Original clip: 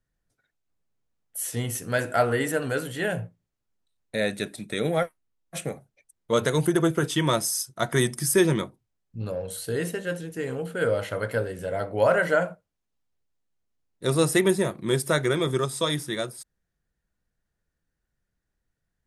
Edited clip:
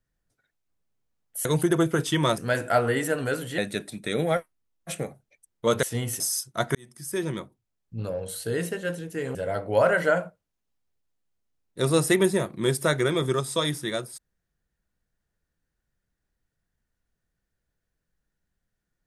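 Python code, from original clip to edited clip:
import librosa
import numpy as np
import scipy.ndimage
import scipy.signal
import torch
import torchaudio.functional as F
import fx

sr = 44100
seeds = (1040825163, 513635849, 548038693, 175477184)

y = fx.edit(x, sr, fx.swap(start_s=1.45, length_s=0.37, other_s=6.49, other_length_s=0.93),
    fx.cut(start_s=3.02, length_s=1.22),
    fx.fade_in_span(start_s=7.97, length_s=1.25),
    fx.cut(start_s=10.57, length_s=1.03), tone=tone)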